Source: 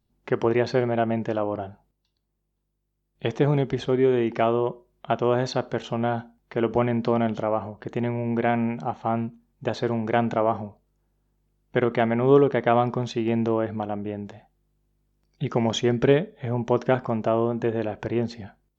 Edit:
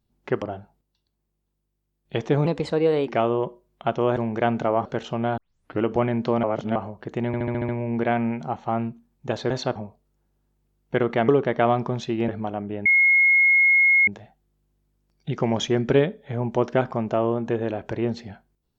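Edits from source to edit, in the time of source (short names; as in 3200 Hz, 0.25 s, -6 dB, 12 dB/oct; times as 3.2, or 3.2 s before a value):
0.42–1.52 cut
3.56–4.31 speed 122%
5.4–5.65 swap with 9.88–10.57
6.17 tape start 0.46 s
7.23–7.55 reverse
8.06 stutter 0.07 s, 7 plays
12.1–12.36 cut
13.36–13.64 cut
14.21 add tone 2160 Hz -13.5 dBFS 1.22 s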